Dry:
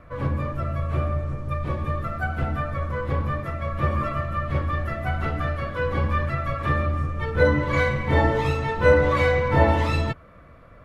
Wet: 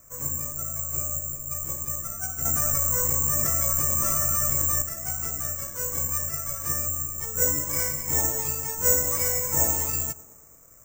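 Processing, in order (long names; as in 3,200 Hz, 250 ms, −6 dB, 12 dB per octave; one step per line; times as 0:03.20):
tape delay 111 ms, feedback 79%, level −18 dB, low-pass 1,300 Hz
bad sample-rate conversion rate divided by 6×, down filtered, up zero stuff
0:02.45–0:04.82: envelope flattener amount 100%
level −13 dB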